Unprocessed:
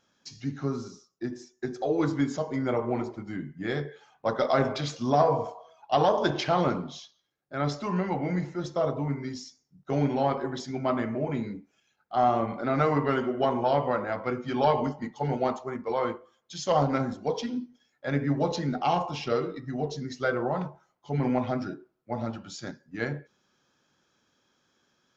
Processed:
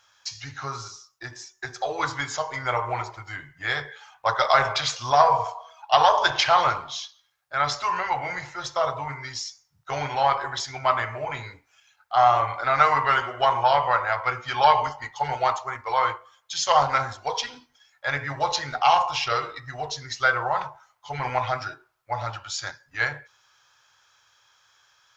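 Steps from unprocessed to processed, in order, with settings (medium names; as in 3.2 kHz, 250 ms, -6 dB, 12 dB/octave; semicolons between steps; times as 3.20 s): FFT filter 120 Hz 0 dB, 200 Hz -27 dB, 940 Hz +9 dB; trim +2 dB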